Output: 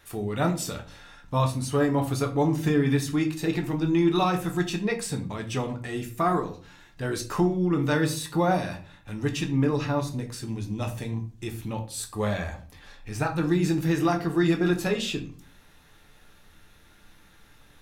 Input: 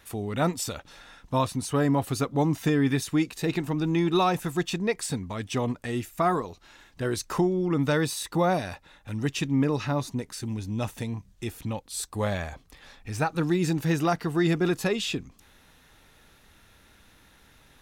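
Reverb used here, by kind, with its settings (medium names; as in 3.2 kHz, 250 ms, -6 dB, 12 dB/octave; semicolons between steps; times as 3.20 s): simulated room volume 32 m³, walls mixed, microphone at 0.4 m; trim -2 dB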